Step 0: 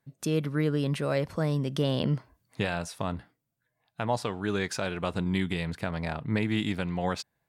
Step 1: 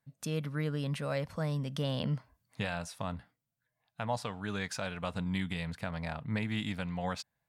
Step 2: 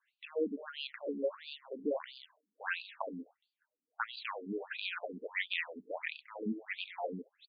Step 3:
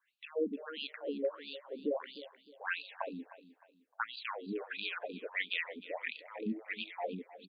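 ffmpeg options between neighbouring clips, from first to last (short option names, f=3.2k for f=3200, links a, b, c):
-af "equalizer=f=360:t=o:w=0.43:g=-13.5,volume=-4.5dB"
-filter_complex "[0:a]acrossover=split=670|5300[a][b][c];[a]adelay=70[d];[c]adelay=230[e];[d][b][e]amix=inputs=3:normalize=0,asubboost=boost=6:cutoff=84,afftfilt=real='re*between(b*sr/1024,290*pow(3500/290,0.5+0.5*sin(2*PI*1.5*pts/sr))/1.41,290*pow(3500/290,0.5+0.5*sin(2*PI*1.5*pts/sr))*1.41)':imag='im*between(b*sr/1024,290*pow(3500/290,0.5+0.5*sin(2*PI*1.5*pts/sr))/1.41,290*pow(3500/290,0.5+0.5*sin(2*PI*1.5*pts/sr))*1.41)':win_size=1024:overlap=0.75,volume=8.5dB"
-af "aecho=1:1:307|614|921:0.158|0.0523|0.0173"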